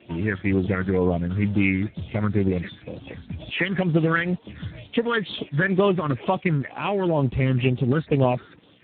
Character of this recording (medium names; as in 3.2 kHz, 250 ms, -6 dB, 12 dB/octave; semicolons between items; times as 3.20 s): phasing stages 8, 2.1 Hz, lowest notch 710–1900 Hz; a quantiser's noise floor 10-bit, dither none; Speex